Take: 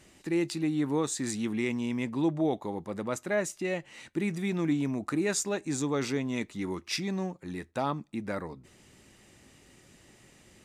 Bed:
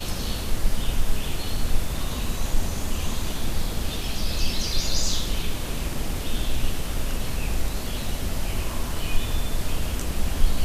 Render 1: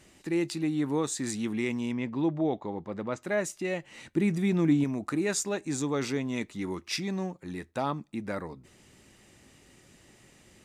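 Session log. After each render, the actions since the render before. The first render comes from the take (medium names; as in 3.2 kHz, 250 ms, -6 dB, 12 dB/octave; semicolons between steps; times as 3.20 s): 1.92–3.23 s: distance through air 130 m; 3.91–4.84 s: bass shelf 460 Hz +6 dB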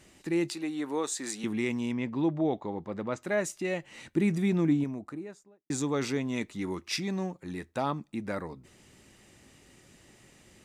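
0.53–1.44 s: high-pass 360 Hz; 4.33–5.70 s: studio fade out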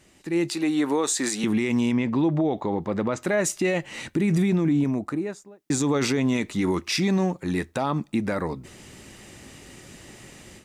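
level rider gain up to 12 dB; peak limiter -15 dBFS, peak gain reduction 11 dB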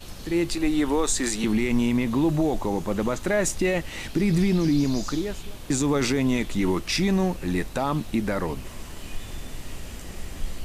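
add bed -11 dB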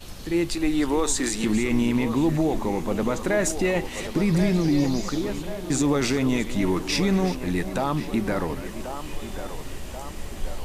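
chunks repeated in reverse 339 ms, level -13.5 dB; band-passed feedback delay 1084 ms, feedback 64%, band-pass 740 Hz, level -8 dB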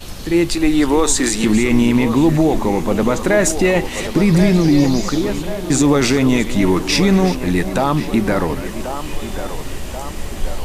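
trim +8.5 dB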